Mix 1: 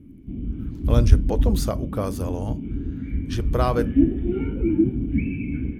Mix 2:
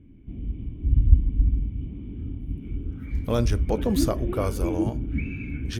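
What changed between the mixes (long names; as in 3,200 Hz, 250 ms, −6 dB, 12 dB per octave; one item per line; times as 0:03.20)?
speech: entry +2.40 s
background: add parametric band 240 Hz −8.5 dB 1.7 octaves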